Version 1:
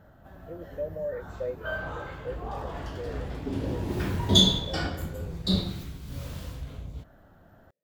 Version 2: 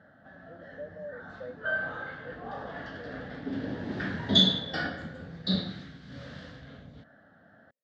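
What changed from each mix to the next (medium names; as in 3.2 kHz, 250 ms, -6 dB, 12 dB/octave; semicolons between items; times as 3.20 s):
speech -7.5 dB; master: add cabinet simulation 180–4500 Hz, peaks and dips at 240 Hz +3 dB, 370 Hz -9 dB, 980 Hz -9 dB, 1.7 kHz +10 dB, 2.5 kHz -9 dB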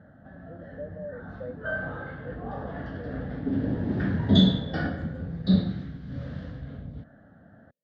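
master: add tilt EQ -3.5 dB/octave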